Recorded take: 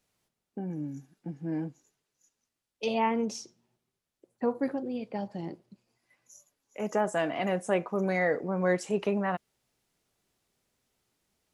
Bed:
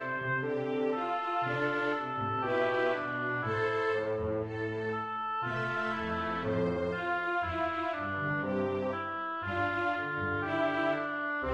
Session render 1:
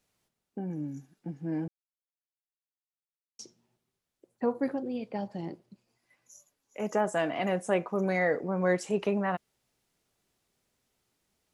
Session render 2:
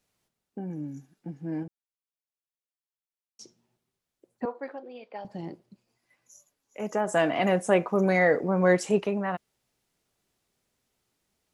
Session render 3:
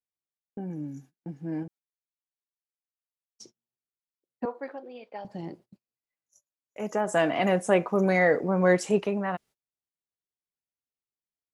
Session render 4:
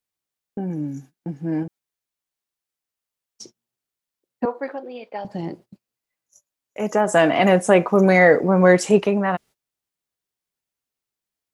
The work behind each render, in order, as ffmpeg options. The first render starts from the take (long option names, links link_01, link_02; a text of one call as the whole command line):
ffmpeg -i in.wav -filter_complex "[0:a]asplit=3[link_01][link_02][link_03];[link_01]atrim=end=1.68,asetpts=PTS-STARTPTS,afade=type=out:start_time=1.676:duration=0.004:curve=hsin[link_04];[link_02]atrim=start=1.68:end=3.39,asetpts=PTS-STARTPTS,volume=0[link_05];[link_03]atrim=start=3.39,asetpts=PTS-STARTPTS,afade=type=in:duration=0.004:curve=hsin[link_06];[link_04][link_05][link_06]concat=n=3:v=0:a=1" out.wav
ffmpeg -i in.wav -filter_complex "[0:a]asettb=1/sr,asplit=3[link_01][link_02][link_03];[link_01]atrim=end=4.454[link_04];[link_02]atrim=start=4.45:end=5.25,asetpts=PTS-STARTPTS,afade=type=in:duration=0.004:curve=qsin,afade=type=out:start_time=0.796:duration=0.004:curve=qsin,highpass=580,lowpass=3800[link_05];[link_03]atrim=start=5.246[link_06];[link_04][link_05]acrossfade=duration=0.004:curve1=hsin:curve2=qsin[link_07];[link_07][link_06]acrossfade=duration=0.004:curve1=qsin:curve2=hsin,asplit=3[link_08][link_09][link_10];[link_08]afade=type=out:start_time=7.08:duration=0.02[link_11];[link_09]acontrast=37,afade=type=in:start_time=7.08:duration=0.02,afade=type=out:start_time=8.99:duration=0.02[link_12];[link_10]afade=type=in:start_time=8.99:duration=0.02[link_13];[link_11][link_12][link_13]amix=inputs=3:normalize=0,asplit=3[link_14][link_15][link_16];[link_14]atrim=end=1.632[link_17];[link_15]atrim=start=1.628:end=3.412,asetpts=PTS-STARTPTS,volume=-4.5dB[link_18];[link_16]atrim=start=3.408[link_19];[link_17][link_18]acrossfade=duration=0.004:curve1=hsin:curve2=hsin[link_20];[link_20][link_19]acrossfade=duration=0.004:curve1=hsin:curve2=hsin" out.wav
ffmpeg -i in.wav -af "agate=range=-27dB:threshold=-51dB:ratio=16:detection=peak" out.wav
ffmpeg -i in.wav -af "volume=8.5dB,alimiter=limit=-3dB:level=0:latency=1" out.wav